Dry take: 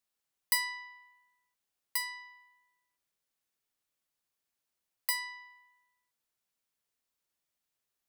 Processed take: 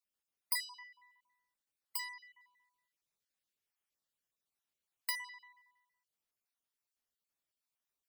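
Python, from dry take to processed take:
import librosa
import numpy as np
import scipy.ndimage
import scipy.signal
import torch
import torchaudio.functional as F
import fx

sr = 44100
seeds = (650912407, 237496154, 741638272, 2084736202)

y = fx.spec_dropout(x, sr, seeds[0], share_pct=33)
y = fx.peak_eq(y, sr, hz=3300.0, db=2.5, octaves=2.1, at=(2.4, 5.1))
y = F.gain(torch.from_numpy(y), -4.5).numpy()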